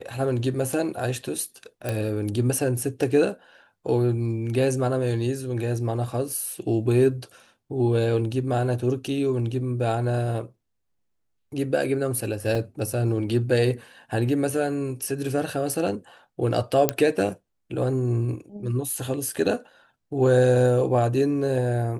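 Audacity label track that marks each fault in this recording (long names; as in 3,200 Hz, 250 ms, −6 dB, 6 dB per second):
1.890000	1.890000	click
12.550000	12.550000	drop-out 3.2 ms
16.890000	16.890000	click −4 dBFS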